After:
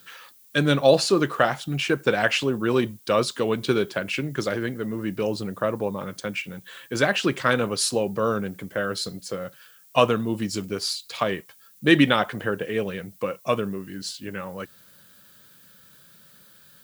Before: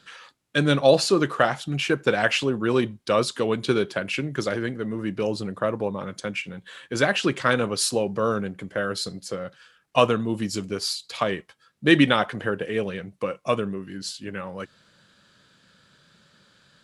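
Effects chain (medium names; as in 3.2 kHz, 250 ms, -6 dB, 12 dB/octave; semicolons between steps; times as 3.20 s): added noise violet -54 dBFS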